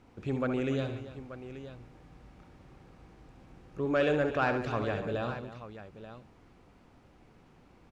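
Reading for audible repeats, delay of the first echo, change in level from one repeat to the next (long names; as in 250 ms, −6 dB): 4, 67 ms, repeats not evenly spaced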